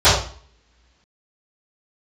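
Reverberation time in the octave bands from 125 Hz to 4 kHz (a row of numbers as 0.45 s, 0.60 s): 0.50 s, 1.3 s, 0.45 s, 0.50 s, 0.45 s, 0.45 s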